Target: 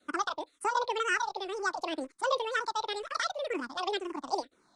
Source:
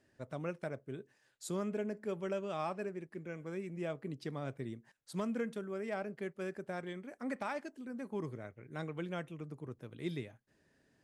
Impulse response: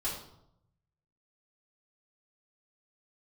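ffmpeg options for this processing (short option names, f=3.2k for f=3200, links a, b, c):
-filter_complex "[0:a]adynamicequalizer=threshold=0.00282:dfrequency=300:dqfactor=1:tfrequency=300:tqfactor=1:attack=5:release=100:ratio=0.375:range=1.5:mode=cutabove:tftype=bell,asetrate=102312,aresample=44100,asplit=2[a][b];[b]aeval=exprs='val(0)*gte(abs(val(0)),0.00282)':c=same,volume=-8dB[c];[a][c]amix=inputs=2:normalize=0,aresample=22050,aresample=44100,asplit=2[d][e];[e]afreqshift=-2[f];[d][f]amix=inputs=2:normalize=1,volume=9dB"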